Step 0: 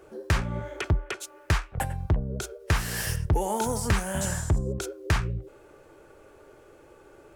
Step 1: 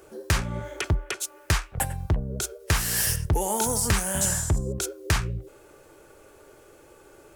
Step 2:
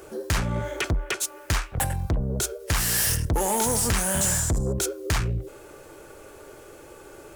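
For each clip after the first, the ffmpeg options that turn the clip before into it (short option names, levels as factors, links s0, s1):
-af "highshelf=f=4500:g=11.5"
-af "asoftclip=type=tanh:threshold=0.0501,volume=2.11"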